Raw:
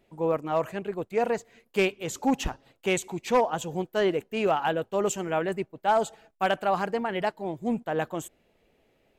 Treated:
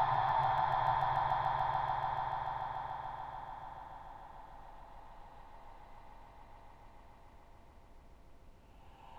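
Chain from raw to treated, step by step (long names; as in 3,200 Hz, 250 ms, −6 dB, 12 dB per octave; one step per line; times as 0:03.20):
compressor whose output falls as the input rises −33 dBFS, ratio −1
resonant band-pass 920 Hz, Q 5.1
harmonic generator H 6 −22 dB, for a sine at −21.5 dBFS
extreme stretch with random phases 28×, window 0.10 s, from 0:02.50
background noise brown −63 dBFS
on a send: echo that builds up and dies away 145 ms, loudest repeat 5, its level −8 dB
on the sum: level +3 dB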